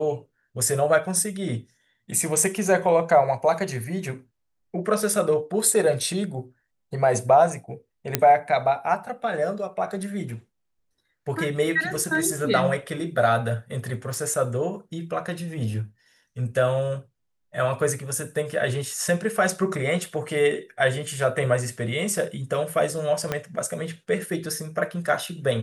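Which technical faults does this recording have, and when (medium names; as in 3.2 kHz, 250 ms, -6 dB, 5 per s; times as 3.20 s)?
8.15 s: pop -2 dBFS
14.14 s: pop
23.32 s: pop -11 dBFS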